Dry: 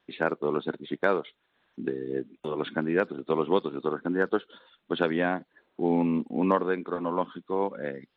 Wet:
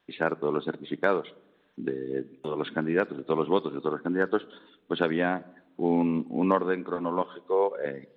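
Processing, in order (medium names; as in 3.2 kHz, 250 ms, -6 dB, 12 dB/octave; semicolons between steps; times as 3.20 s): 7.22–7.86 s: resonant low shelf 330 Hz -9 dB, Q 3; simulated room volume 3700 m³, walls furnished, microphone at 0.36 m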